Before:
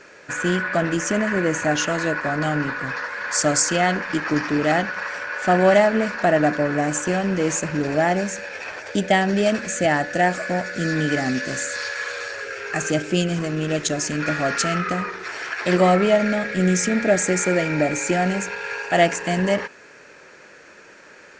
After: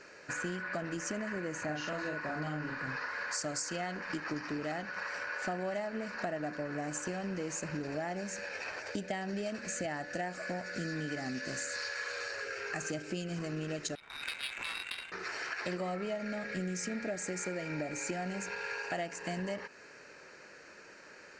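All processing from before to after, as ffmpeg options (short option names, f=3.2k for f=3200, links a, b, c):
-filter_complex "[0:a]asettb=1/sr,asplit=3[a][b][c];[a]atrim=end=1.634[d];[b]atrim=start=1.63:end=3.24,asetpts=PTS-STARTPTS,afade=t=in:d=0.004:c=qsin,afade=t=out:st=1.606:d=0.004:c=qsin,lowpass=8k,acrossover=split=5300[e][f];[f]acompressor=threshold=-51dB:ratio=4:attack=1:release=60[g];[e][g]amix=inputs=2:normalize=0,asplit=2[h][i];[i]adelay=46,volume=-2dB[j];[h][j]amix=inputs=2:normalize=0,atrim=end_sample=71001[k];[c]atrim=start=3.236[l];[d][k]acrossfade=d=0.004:c1=hsin:c2=qsin[m];[m][l]acrossfade=d=0.004:c1=qsin:c2=hsin,asettb=1/sr,asplit=3[n][o][p];[n]atrim=end=13.954[q];[o]atrim=start=13.95:end=15.12,asetpts=PTS-STARTPTS,afade=t=in:d=0.004:c=qsin,afade=t=out:st=1.166:d=0.004:c=qsin,lowpass=f=3.4k:t=q:w=0.5098,lowpass=f=3.4k:t=q:w=0.6013,lowpass=f=3.4k:t=q:w=0.9,lowpass=f=3.4k:t=q:w=2.563,afreqshift=-4000,adynamicsmooth=sensitivity=1:basefreq=720[r];[p]atrim=start=15.116[s];[q][r]acrossfade=d=0.004:c1=hsin:c2=qsin[t];[t][s]acrossfade=d=0.004:c1=qsin:c2=hsin,equalizer=f=4.7k:t=o:w=0.4:g=4.5,bandreject=f=3.4k:w=9,acompressor=threshold=-27dB:ratio=6,volume=-7.5dB"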